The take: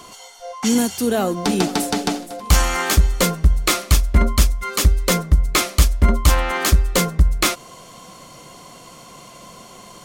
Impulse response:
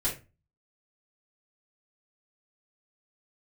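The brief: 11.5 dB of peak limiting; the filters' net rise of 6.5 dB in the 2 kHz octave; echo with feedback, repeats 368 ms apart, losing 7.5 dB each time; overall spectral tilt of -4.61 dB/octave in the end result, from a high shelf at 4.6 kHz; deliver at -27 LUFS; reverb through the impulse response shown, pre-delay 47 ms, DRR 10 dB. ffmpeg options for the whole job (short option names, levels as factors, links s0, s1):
-filter_complex "[0:a]equalizer=f=2000:t=o:g=9,highshelf=f=4600:g=-7,alimiter=limit=0.251:level=0:latency=1,aecho=1:1:368|736|1104|1472|1840:0.422|0.177|0.0744|0.0312|0.0131,asplit=2[s0][s1];[1:a]atrim=start_sample=2205,adelay=47[s2];[s1][s2]afir=irnorm=-1:irlink=0,volume=0.158[s3];[s0][s3]amix=inputs=2:normalize=0,volume=0.531"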